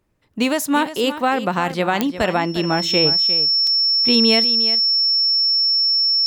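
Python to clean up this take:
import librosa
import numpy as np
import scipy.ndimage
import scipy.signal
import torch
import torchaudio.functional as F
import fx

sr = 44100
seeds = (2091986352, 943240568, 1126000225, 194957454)

y = fx.fix_declick_ar(x, sr, threshold=10.0)
y = fx.notch(y, sr, hz=5400.0, q=30.0)
y = fx.fix_interpolate(y, sr, at_s=(3.67,), length_ms=3.1)
y = fx.fix_echo_inverse(y, sr, delay_ms=354, level_db=-12.5)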